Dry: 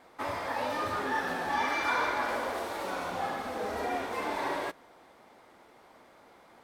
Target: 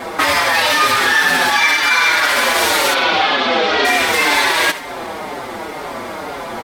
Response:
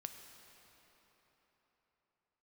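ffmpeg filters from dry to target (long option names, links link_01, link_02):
-filter_complex "[0:a]aecho=1:1:73:0.119,acrossover=split=1700[link_01][link_02];[link_01]acompressor=threshold=-47dB:ratio=10[link_03];[link_03][link_02]amix=inputs=2:normalize=0,asettb=1/sr,asplit=3[link_04][link_05][link_06];[link_04]atrim=end=2.944[link_07];[link_05]atrim=start=2.94:end=3.85,asetpts=PTS-STARTPTS,afade=type=in:duration=0.004:curve=qsin,afade=type=out:start_time=0.906:duration=0.004:curve=qsin,highpass=140,equalizer=frequency=170:width_type=q:width=4:gain=-8,equalizer=frequency=380:width_type=q:width=4:gain=4,equalizer=frequency=1800:width_type=q:width=4:gain=-5,equalizer=frequency=3200:width_type=q:width=4:gain=3,lowpass=frequency=4400:width=0.5412,lowpass=frequency=4400:width=1.3066[link_08];[link_06]atrim=start=3.846[link_09];[link_07][link_08]acrossfade=duration=0.004:curve1=hsin:curve2=qsin[link_10];[link_10][link_09]acrossfade=duration=0.004:curve1=qsin:curve2=hsin,asplit=2[link_11][link_12];[1:a]atrim=start_sample=2205,adelay=88[link_13];[link_12][link_13]afir=irnorm=-1:irlink=0,volume=-14dB[link_14];[link_11][link_14]amix=inputs=2:normalize=0,alimiter=level_in=34.5dB:limit=-1dB:release=50:level=0:latency=1,asplit=2[link_15][link_16];[link_16]adelay=5.5,afreqshift=-2[link_17];[link_15][link_17]amix=inputs=2:normalize=1,volume=-1dB"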